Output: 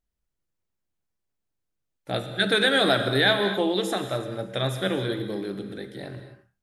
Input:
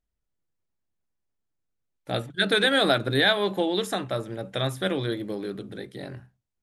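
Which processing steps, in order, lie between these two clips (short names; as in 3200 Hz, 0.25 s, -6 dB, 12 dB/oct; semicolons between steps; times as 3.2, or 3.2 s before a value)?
non-linear reverb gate 0.29 s flat, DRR 7 dB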